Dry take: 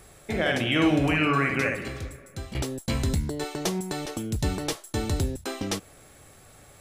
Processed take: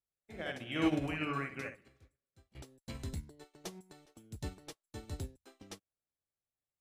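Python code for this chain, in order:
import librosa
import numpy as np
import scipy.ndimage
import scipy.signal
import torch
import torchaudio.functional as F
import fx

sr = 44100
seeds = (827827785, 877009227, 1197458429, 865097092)

y = fx.upward_expand(x, sr, threshold_db=-46.0, expansion=2.5)
y = F.gain(torch.from_numpy(y), -7.0).numpy()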